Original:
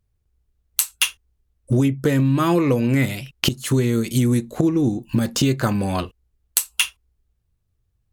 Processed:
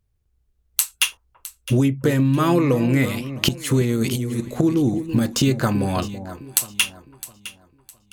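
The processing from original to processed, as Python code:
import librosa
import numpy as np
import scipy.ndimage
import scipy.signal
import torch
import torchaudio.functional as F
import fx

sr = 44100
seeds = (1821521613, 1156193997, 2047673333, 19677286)

p1 = fx.over_compress(x, sr, threshold_db=-21.0, ratio=-0.5, at=(3.84, 4.54))
y = p1 + fx.echo_alternate(p1, sr, ms=330, hz=880.0, feedback_pct=55, wet_db=-10.5, dry=0)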